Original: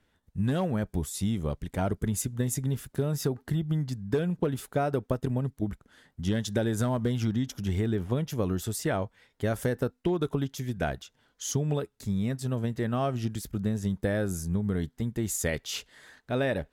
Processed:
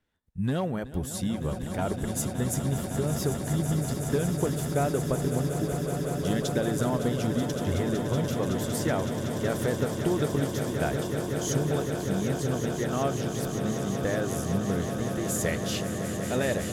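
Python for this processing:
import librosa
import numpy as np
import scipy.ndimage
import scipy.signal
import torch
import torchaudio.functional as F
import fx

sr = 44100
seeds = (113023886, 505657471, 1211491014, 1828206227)

y = fx.noise_reduce_blind(x, sr, reduce_db=9)
y = fx.echo_swell(y, sr, ms=187, loudest=8, wet_db=-11)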